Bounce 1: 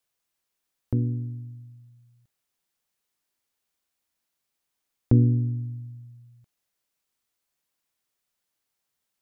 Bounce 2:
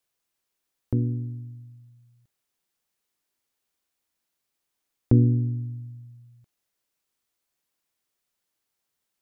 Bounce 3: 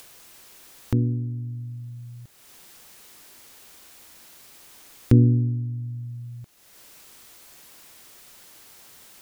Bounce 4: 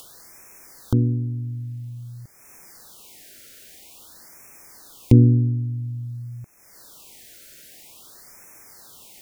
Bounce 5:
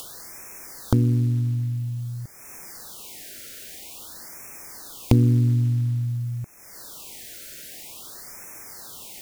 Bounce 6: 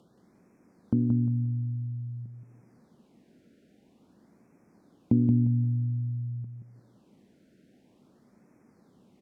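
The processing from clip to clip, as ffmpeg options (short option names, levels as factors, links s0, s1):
-af "equalizer=f=360:t=o:w=0.77:g=2.5"
-af "acompressor=mode=upward:threshold=0.0398:ratio=2.5,volume=1.33"
-af "afftfilt=real='re*(1-between(b*sr/1024,920*pow(3800/920,0.5+0.5*sin(2*PI*0.5*pts/sr))/1.41,920*pow(3800/920,0.5+0.5*sin(2*PI*0.5*pts/sr))*1.41))':imag='im*(1-between(b*sr/1024,920*pow(3800/920,0.5+0.5*sin(2*PI*0.5*pts/sr))/1.41,920*pow(3800/920,0.5+0.5*sin(2*PI*0.5*pts/sr))*1.41))':win_size=1024:overlap=0.75,volume=1.41"
-af "acompressor=threshold=0.0708:ratio=3,acrusher=bits=8:mode=log:mix=0:aa=0.000001,volume=2"
-filter_complex "[0:a]bandpass=f=210:t=q:w=2.4:csg=0,asplit=2[s0][s1];[s1]aecho=0:1:176|352|528|704:0.531|0.154|0.0446|0.0129[s2];[s0][s2]amix=inputs=2:normalize=0"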